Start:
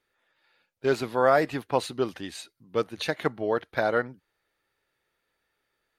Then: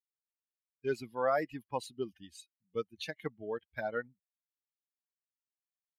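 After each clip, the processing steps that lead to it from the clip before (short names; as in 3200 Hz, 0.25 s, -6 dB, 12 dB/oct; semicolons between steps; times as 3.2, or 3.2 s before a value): per-bin expansion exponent 2; gain -7 dB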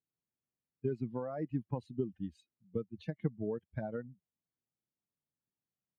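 limiter -24.5 dBFS, peak gain reduction 6.5 dB; compressor 4:1, threshold -42 dBFS, peak gain reduction 10.5 dB; band-pass 150 Hz, Q 1.2; gain +17 dB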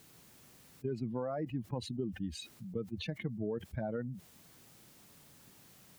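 fast leveller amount 70%; gain -5 dB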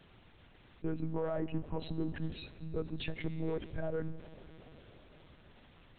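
in parallel at -7.5 dB: hard clip -39 dBFS, distortion -6 dB; on the sum: plate-style reverb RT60 4.5 s, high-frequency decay 0.8×, DRR 13 dB; monotone LPC vocoder at 8 kHz 160 Hz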